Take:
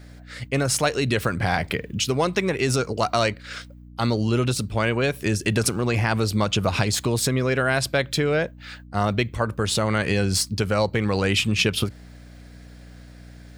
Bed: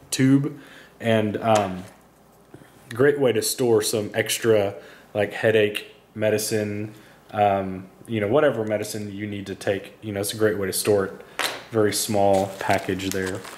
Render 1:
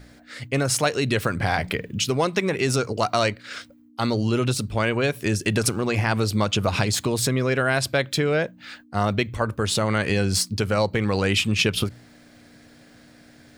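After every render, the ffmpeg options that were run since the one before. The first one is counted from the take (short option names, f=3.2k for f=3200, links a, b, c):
-af "bandreject=f=60:t=h:w=4,bandreject=f=120:t=h:w=4,bandreject=f=180:t=h:w=4"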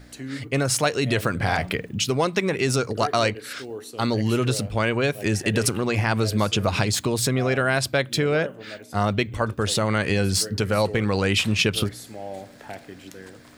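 -filter_complex "[1:a]volume=-16.5dB[a];[0:a][a]amix=inputs=2:normalize=0"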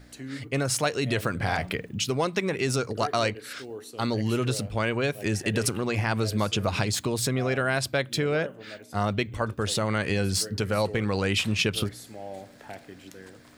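-af "volume=-4dB"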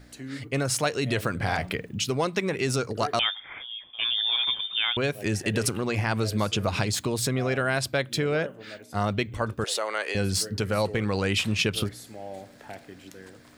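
-filter_complex "[0:a]asettb=1/sr,asplit=3[a][b][c];[a]atrim=end=3.194[d];[b]atrim=start=3.19:end=4.97,asetpts=PTS-STARTPTS,afade=t=in:d=0.004:c=qsin,afade=t=out:st=1.776:d=0.004:c=qsin,lowpass=f=3.1k:t=q:w=0.5098,lowpass=f=3.1k:t=q:w=0.6013,lowpass=f=3.1k:t=q:w=0.9,lowpass=f=3.1k:t=q:w=2.563,afreqshift=-3700[e];[c]atrim=start=4.966[f];[d][e]acrossfade=d=0.004:c1=hsin:c2=qsin[g];[g][f]acrossfade=d=0.004:c1=qsin:c2=hsin,asettb=1/sr,asplit=3[h][i][j];[h]atrim=end=9.644[k];[i]atrim=start=9.64:end=10.15,asetpts=PTS-STARTPTS,afade=t=in:d=0.004:c=qsin,afade=t=out:st=0.506:d=0.004:c=qsin,highpass=f=430:w=0.5412,highpass=f=430:w=1.3066[l];[j]atrim=start=10.146[m];[k][l]acrossfade=d=0.004:c1=hsin:c2=qsin[n];[n][m]acrossfade=d=0.004:c1=qsin:c2=hsin"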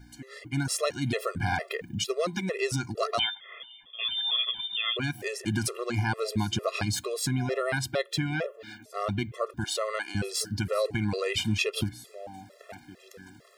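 -af "afftfilt=real='re*gt(sin(2*PI*2.2*pts/sr)*(1-2*mod(floor(b*sr/1024/350),2)),0)':imag='im*gt(sin(2*PI*2.2*pts/sr)*(1-2*mod(floor(b*sr/1024/350),2)),0)':win_size=1024:overlap=0.75"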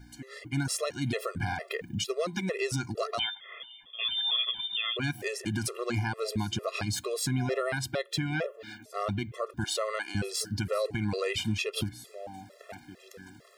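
-af "alimiter=limit=-20.5dB:level=0:latency=1:release=197"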